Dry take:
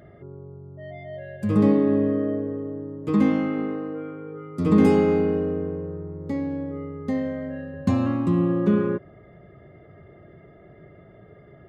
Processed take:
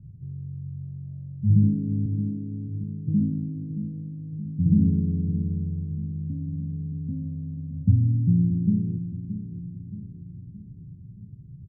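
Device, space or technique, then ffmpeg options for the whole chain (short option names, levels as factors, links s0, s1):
the neighbour's flat through the wall: -filter_complex "[0:a]lowpass=f=160:w=0.5412,lowpass=f=160:w=1.3066,equalizer=f=120:t=o:w=0.77:g=4,asettb=1/sr,asplit=3[s0][s1][s2];[s0]atrim=end=2.064[s3];[s1]atrim=start=2.06:end=2.84,asetpts=PTS-STARTPTS,afade=t=in:d=0.004:c=qsin,afade=t=out:st=0.776:d=0.004:c=qsin,highpass=160[s4];[s2]atrim=start=2.836[s5];[s3][s4]acrossfade=d=0.004:c1=hsin:c2=qsin[s6];[s6][s5]acrossfade=d=0.004:c1=qsin:c2=hsin,asplit=2[s7][s8];[s8]adelay=623,lowpass=f=2000:p=1,volume=0.282,asplit=2[s9][s10];[s10]adelay=623,lowpass=f=2000:p=1,volume=0.53,asplit=2[s11][s12];[s12]adelay=623,lowpass=f=2000:p=1,volume=0.53,asplit=2[s13][s14];[s14]adelay=623,lowpass=f=2000:p=1,volume=0.53,asplit=2[s15][s16];[s16]adelay=623,lowpass=f=2000:p=1,volume=0.53,asplit=2[s17][s18];[s18]adelay=623,lowpass=f=2000:p=1,volume=0.53[s19];[s7][s9][s11][s13][s15][s17][s19]amix=inputs=7:normalize=0,volume=2"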